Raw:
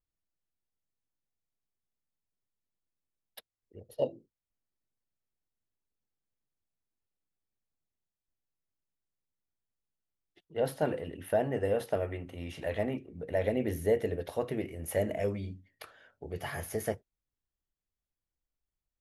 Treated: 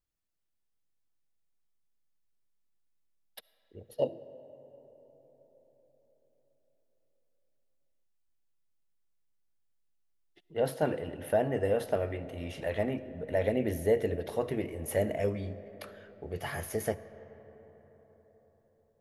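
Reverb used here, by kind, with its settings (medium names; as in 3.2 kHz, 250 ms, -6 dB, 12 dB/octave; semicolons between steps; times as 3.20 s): algorithmic reverb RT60 4.8 s, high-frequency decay 0.4×, pre-delay 30 ms, DRR 15 dB; trim +1 dB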